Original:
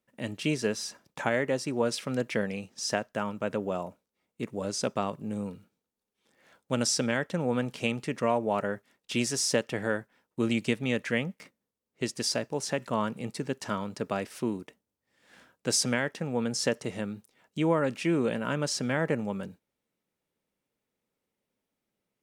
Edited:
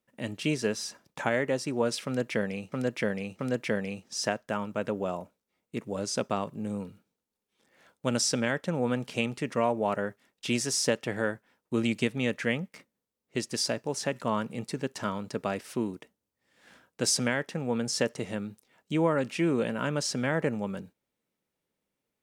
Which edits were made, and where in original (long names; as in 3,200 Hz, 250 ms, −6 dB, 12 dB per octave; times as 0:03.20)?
0:02.05–0:02.72: repeat, 3 plays